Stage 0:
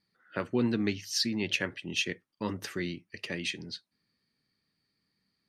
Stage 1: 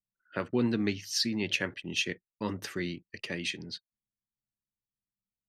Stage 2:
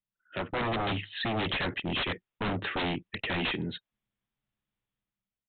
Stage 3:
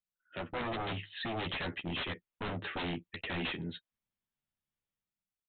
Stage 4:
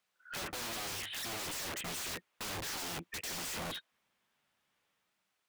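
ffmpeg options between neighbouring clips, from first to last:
-af "anlmdn=0.000398"
-af "dynaudnorm=f=120:g=9:m=3.16,aresample=8000,aeval=exprs='0.0562*(abs(mod(val(0)/0.0562+3,4)-2)-1)':c=same,aresample=44100"
-filter_complex "[0:a]asplit=2[s0][s1];[s1]adelay=12,volume=0.447[s2];[s0][s2]amix=inputs=2:normalize=0,volume=0.447"
-filter_complex "[0:a]asplit=2[s0][s1];[s1]highpass=f=720:p=1,volume=35.5,asoftclip=type=tanh:threshold=0.0501[s2];[s0][s2]amix=inputs=2:normalize=0,lowpass=f=2300:p=1,volume=0.501,aeval=exprs='(mod(42.2*val(0)+1,2)-1)/42.2':c=same,volume=0.631"

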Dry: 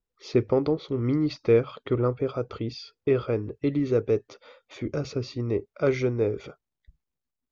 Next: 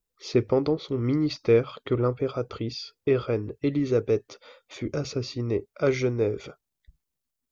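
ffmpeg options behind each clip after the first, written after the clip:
-af "highshelf=f=4700:g=9"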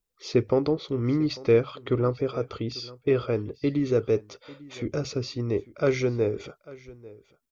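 -af "aecho=1:1:845:0.0944"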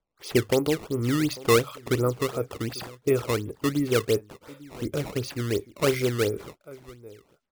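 -af "acrusher=samples=16:mix=1:aa=0.000001:lfo=1:lforange=25.6:lforate=2.8"

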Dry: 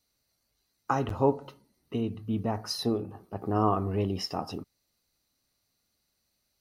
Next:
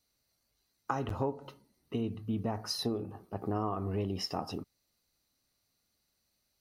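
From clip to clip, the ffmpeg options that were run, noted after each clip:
-af "acompressor=threshold=0.0447:ratio=6,volume=0.841"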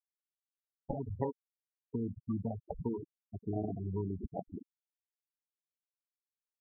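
-filter_complex "[0:a]asplit=6[s0][s1][s2][s3][s4][s5];[s1]adelay=118,afreqshift=66,volume=0.075[s6];[s2]adelay=236,afreqshift=132,volume=0.0462[s7];[s3]adelay=354,afreqshift=198,volume=0.0288[s8];[s4]adelay=472,afreqshift=264,volume=0.0178[s9];[s5]adelay=590,afreqshift=330,volume=0.0111[s10];[s0][s6][s7][s8][s9][s10]amix=inputs=6:normalize=0,acrusher=samples=32:mix=1:aa=0.000001,afftfilt=real='re*gte(hypot(re,im),0.0708)':imag='im*gte(hypot(re,im),0.0708)':win_size=1024:overlap=0.75,volume=0.841"

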